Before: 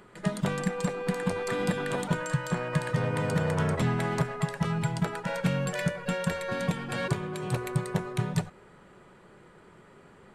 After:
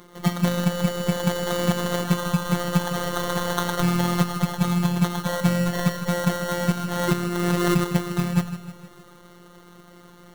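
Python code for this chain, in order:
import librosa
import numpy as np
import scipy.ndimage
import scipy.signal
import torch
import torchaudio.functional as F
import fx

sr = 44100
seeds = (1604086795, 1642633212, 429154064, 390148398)

y = fx.riaa(x, sr, side='recording', at=(2.93, 3.83))
y = fx.sample_hold(y, sr, seeds[0], rate_hz=2500.0, jitter_pct=0)
y = fx.robotise(y, sr, hz=175.0)
y = fx.echo_feedback(y, sr, ms=155, feedback_pct=54, wet_db=-12)
y = fx.pre_swell(y, sr, db_per_s=33.0, at=(7.07, 7.83), fade=0.02)
y = y * librosa.db_to_amplitude(7.5)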